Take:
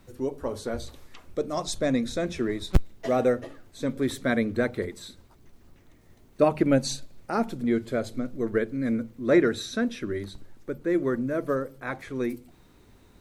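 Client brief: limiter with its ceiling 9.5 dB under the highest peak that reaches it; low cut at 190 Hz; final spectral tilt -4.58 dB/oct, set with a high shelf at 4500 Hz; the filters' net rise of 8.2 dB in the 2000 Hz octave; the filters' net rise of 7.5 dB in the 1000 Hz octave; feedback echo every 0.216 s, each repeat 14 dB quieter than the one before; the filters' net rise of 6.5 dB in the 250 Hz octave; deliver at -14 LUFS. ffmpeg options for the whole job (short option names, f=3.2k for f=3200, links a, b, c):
-af "highpass=190,equalizer=f=250:t=o:g=8.5,equalizer=f=1k:t=o:g=8,equalizer=f=2k:t=o:g=8.5,highshelf=f=4.5k:g=-7,alimiter=limit=-12.5dB:level=0:latency=1,aecho=1:1:216|432:0.2|0.0399,volume=11dB"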